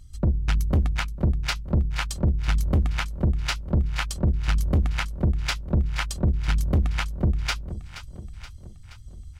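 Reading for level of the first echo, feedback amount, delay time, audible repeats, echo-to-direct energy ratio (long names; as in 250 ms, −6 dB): −14.0 dB, 57%, 475 ms, 5, −12.5 dB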